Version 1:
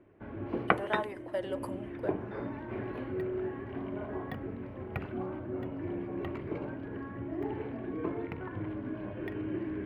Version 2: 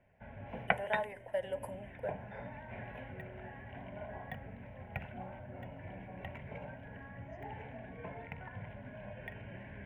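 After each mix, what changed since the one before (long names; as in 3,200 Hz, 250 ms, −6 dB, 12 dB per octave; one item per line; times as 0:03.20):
second voice: remove high-frequency loss of the air 390 metres
background: add graphic EQ with 15 bands 100 Hz −5 dB, 400 Hz −9 dB, 4,000 Hz +5 dB, 10,000 Hz −4 dB
master: add phaser with its sweep stopped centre 1,200 Hz, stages 6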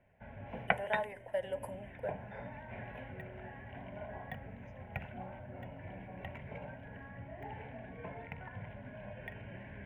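second voice: entry −2.65 s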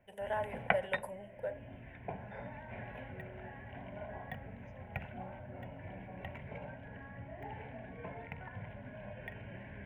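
first voice: entry −0.60 s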